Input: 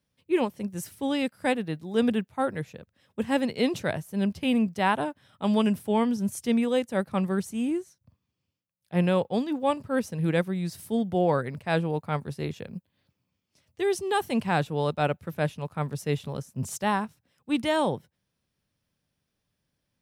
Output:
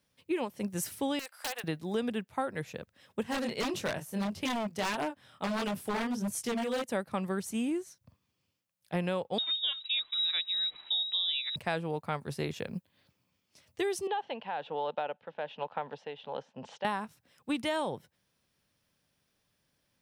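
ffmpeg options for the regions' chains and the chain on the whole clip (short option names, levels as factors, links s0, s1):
-filter_complex "[0:a]asettb=1/sr,asplit=3[s0][s1][s2];[s0]atrim=end=1.194[s3];[s1]atrim=start=1.19:end=1.64,asetpts=PTS-STARTPTS,afade=t=in:d=0.004:c=qsin,afade=t=out:st=0.446:d=0.004:c=qsin,highpass=f=670:w=0.5412,highpass=f=670:w=1.3066,acompressor=threshold=0.0178:ratio=8:attack=3.2:release=140:knee=1:detection=peak,aeval=exprs='(mod(37.6*val(0)+1,2)-1)/37.6':c=same[s4];[s2]atrim=start=1.636[s5];[s3][s4]acrossfade=d=0.004:c1=hsin:c2=qsin[s6];[s6][s5]acrossfade=d=0.004:c1=qsin:c2=hsin,asettb=1/sr,asplit=3[s7][s8][s9];[s7]atrim=end=3.234[s10];[s8]atrim=start=3.23:end=6.84,asetpts=PTS-STARTPTS,afade=t=in:d=0.004:c=qsin,afade=t=out:st=3.606:d=0.004:c=qsin,flanger=delay=19.5:depth=7:speed=1.6,aeval=exprs='0.0596*(abs(mod(val(0)/0.0596+3,4)-2)-1)':c=same[s11];[s9]atrim=start=6.836[s12];[s10][s11]acrossfade=d=0.004:c1=hsin:c2=qsin[s13];[s13][s12]acrossfade=d=0.004:c1=qsin:c2=hsin,asettb=1/sr,asplit=3[s14][s15][s16];[s14]atrim=end=9.384[s17];[s15]atrim=start=9.38:end=11.56,asetpts=PTS-STARTPTS,afade=t=in:d=0.004:c=qsin,afade=t=out:st=2.176:d=0.004:c=qsin,equalizer=f=640:t=o:w=0.31:g=-9,lowpass=f=3400:t=q:w=0.5098,lowpass=f=3400:t=q:w=0.6013,lowpass=f=3400:t=q:w=0.9,lowpass=f=3400:t=q:w=2.563,afreqshift=-4000[s18];[s16]atrim=start=11.556[s19];[s17][s18]acrossfade=d=0.004:c1=hsin:c2=qsin[s20];[s20][s19]acrossfade=d=0.004:c1=qsin:c2=hsin,asettb=1/sr,asplit=3[s21][s22][s23];[s21]atrim=end=14.074[s24];[s22]atrim=start=14.07:end=16.85,asetpts=PTS-STARTPTS,afade=t=in:d=0.004:c=qsin,afade=t=out:st=2.776:d=0.004:c=qsin,acompressor=threshold=0.0398:ratio=6:attack=3.2:release=140:knee=1:detection=peak,highpass=350,equalizer=f=350:t=q:w=4:g=-8,equalizer=f=500:t=q:w=4:g=4,equalizer=f=850:t=q:w=4:g=7,equalizer=f=1200:t=q:w=4:g=-6,equalizer=f=2200:t=q:w=4:g=-6,equalizer=f=3100:t=q:w=4:g=4,lowpass=f=3300:w=0.5412,lowpass=f=3300:w=1.3066,tremolo=f=1.2:d=0.58[s25];[s23]atrim=start=16.846[s26];[s24][s25]acrossfade=d=0.004:c1=hsin:c2=qsin[s27];[s27][s26]acrossfade=d=0.004:c1=qsin:c2=hsin,lowshelf=f=290:g=-7.5,acompressor=threshold=0.0178:ratio=6,volume=1.88"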